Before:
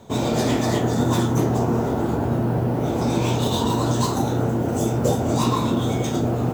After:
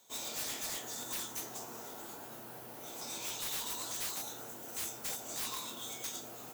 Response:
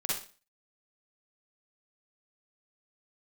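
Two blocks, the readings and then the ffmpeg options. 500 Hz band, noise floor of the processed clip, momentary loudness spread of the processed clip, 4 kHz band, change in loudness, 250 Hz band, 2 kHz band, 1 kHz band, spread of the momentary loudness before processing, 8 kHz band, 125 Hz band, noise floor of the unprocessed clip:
−26.5 dB, −49 dBFS, 9 LU, −10.0 dB, −17.5 dB, −32.0 dB, −12.5 dB, −21.5 dB, 2 LU, −5.0 dB, −37.5 dB, −24 dBFS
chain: -af "aderivative,aeval=exprs='(mod(26.6*val(0)+1,2)-1)/26.6':channel_layout=same,volume=-3dB"

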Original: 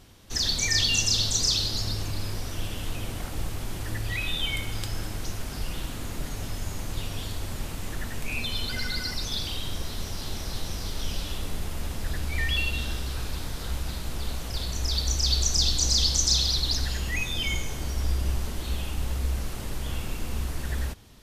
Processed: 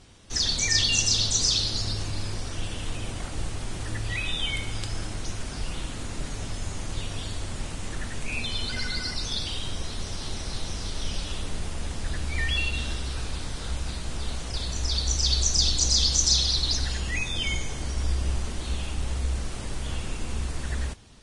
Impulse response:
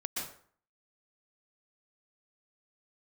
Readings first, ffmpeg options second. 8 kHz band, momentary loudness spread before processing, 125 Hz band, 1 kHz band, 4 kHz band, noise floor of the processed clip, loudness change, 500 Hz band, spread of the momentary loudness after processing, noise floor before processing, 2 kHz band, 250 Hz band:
+1.5 dB, 13 LU, 0.0 dB, +0.5 dB, +1.0 dB, −35 dBFS, +0.5 dB, 0.0 dB, 14 LU, −36 dBFS, 0.0 dB, 0.0 dB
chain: -ar 22050 -c:a libvorbis -b:a 32k

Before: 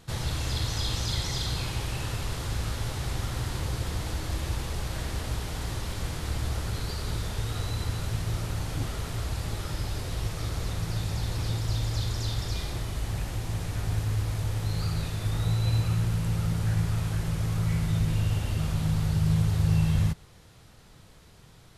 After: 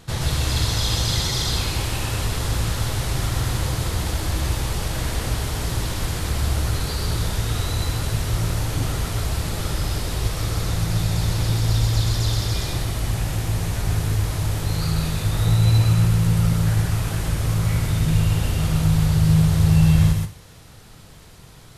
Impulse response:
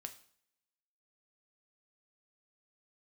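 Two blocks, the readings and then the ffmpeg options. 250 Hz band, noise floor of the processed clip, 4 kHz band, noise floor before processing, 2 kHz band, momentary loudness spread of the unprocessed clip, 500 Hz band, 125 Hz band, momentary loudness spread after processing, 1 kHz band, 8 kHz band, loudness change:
+8.5 dB, −44 dBFS, +8.5 dB, −53 dBFS, +8.0 dB, 7 LU, +7.5 dB, +7.5 dB, 8 LU, +8.0 dB, +10.0 dB, +8.0 dB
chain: -filter_complex "[0:a]asplit=2[link_01][link_02];[1:a]atrim=start_sample=2205,highshelf=frequency=7300:gain=10.5,adelay=126[link_03];[link_02][link_03]afir=irnorm=-1:irlink=0,volume=-0.5dB[link_04];[link_01][link_04]amix=inputs=2:normalize=0,volume=6.5dB"

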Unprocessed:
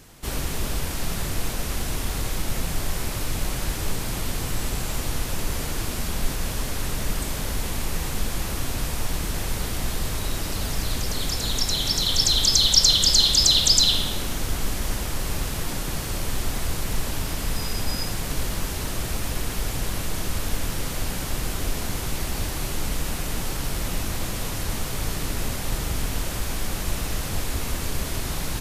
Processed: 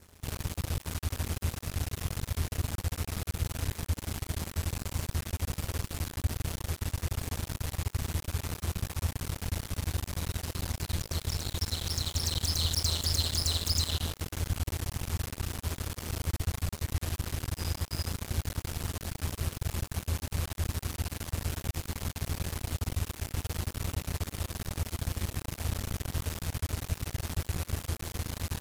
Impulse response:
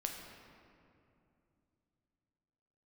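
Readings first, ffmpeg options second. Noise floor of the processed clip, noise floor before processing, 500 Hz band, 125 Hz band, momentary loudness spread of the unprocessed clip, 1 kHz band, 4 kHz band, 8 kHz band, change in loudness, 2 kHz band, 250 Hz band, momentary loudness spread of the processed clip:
−55 dBFS, −30 dBFS, −9.0 dB, −1.5 dB, 12 LU, −9.5 dB, −13.5 dB, −11.0 dB, −9.0 dB, −9.5 dB, −8.0 dB, 7 LU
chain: -af "adynamicequalizer=threshold=0.0112:dfrequency=3400:dqfactor=4.3:tfrequency=3400:tqfactor=4.3:attack=5:release=100:ratio=0.375:range=3.5:mode=cutabove:tftype=bell,aeval=exprs='max(val(0),0)':channel_layout=same,aeval=exprs='val(0)*sin(2*PI*82*n/s)':channel_layout=same,asoftclip=type=tanh:threshold=-16dB,volume=-2dB"

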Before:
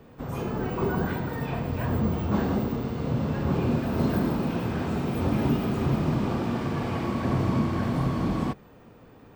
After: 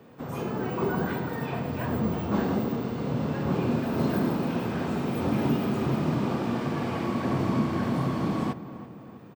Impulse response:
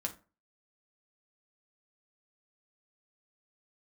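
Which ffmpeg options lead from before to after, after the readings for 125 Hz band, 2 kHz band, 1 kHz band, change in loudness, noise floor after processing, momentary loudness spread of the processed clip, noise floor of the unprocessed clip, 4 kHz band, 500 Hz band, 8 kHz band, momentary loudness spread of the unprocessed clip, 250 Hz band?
−3.0 dB, 0.0 dB, 0.0 dB, −1.0 dB, −45 dBFS, 5 LU, −51 dBFS, 0.0 dB, 0.0 dB, can't be measured, 5 LU, −0.5 dB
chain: -filter_complex "[0:a]highpass=130,asplit=2[link_01][link_02];[link_02]adelay=332,lowpass=frequency=1900:poles=1,volume=-13.5dB,asplit=2[link_03][link_04];[link_04]adelay=332,lowpass=frequency=1900:poles=1,volume=0.54,asplit=2[link_05][link_06];[link_06]adelay=332,lowpass=frequency=1900:poles=1,volume=0.54,asplit=2[link_07][link_08];[link_08]adelay=332,lowpass=frequency=1900:poles=1,volume=0.54,asplit=2[link_09][link_10];[link_10]adelay=332,lowpass=frequency=1900:poles=1,volume=0.54[link_11];[link_01][link_03][link_05][link_07][link_09][link_11]amix=inputs=6:normalize=0"

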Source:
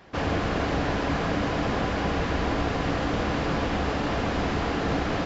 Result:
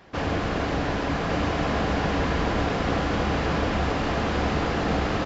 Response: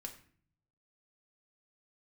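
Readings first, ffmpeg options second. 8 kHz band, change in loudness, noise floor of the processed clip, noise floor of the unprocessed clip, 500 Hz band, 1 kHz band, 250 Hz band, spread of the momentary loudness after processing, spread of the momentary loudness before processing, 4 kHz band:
can't be measured, +1.5 dB, −27 dBFS, −28 dBFS, +1.5 dB, +1.5 dB, +1.0 dB, 2 LU, 1 LU, +1.5 dB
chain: -af "aecho=1:1:1156:0.668"

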